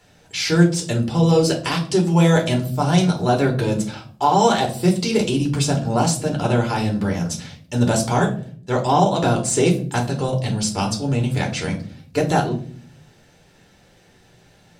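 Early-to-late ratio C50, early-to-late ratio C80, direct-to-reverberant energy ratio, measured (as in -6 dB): 11.5 dB, 16.5 dB, -0.5 dB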